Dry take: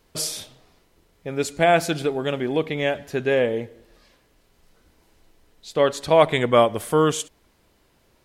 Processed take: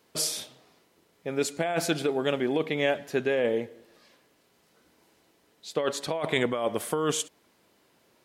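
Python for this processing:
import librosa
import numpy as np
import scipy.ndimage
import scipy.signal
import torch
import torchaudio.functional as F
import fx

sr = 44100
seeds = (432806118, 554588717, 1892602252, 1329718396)

y = scipy.signal.sosfilt(scipy.signal.butter(2, 170.0, 'highpass', fs=sr, output='sos'), x)
y = fx.over_compress(y, sr, threshold_db=-21.0, ratio=-1.0)
y = y * librosa.db_to_amplitude(-4.0)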